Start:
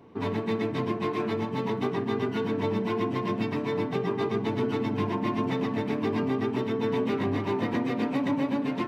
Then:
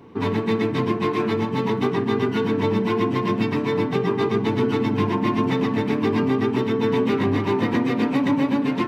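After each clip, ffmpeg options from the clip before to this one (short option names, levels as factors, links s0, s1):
-af "equalizer=f=640:t=o:w=0.38:g=-6.5,volume=2.24"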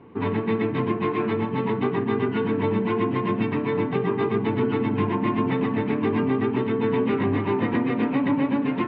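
-af "lowpass=f=3000:w=0.5412,lowpass=f=3000:w=1.3066,volume=0.794"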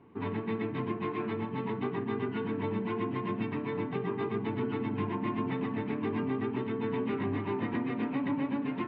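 -af "equalizer=f=500:t=o:w=0.21:g=-5.5,volume=0.355"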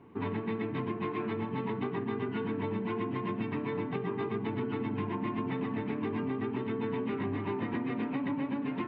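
-af "acompressor=threshold=0.0251:ratio=6,volume=1.33"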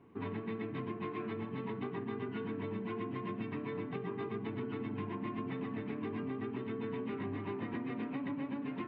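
-af "bandreject=f=890:w=19,volume=0.531"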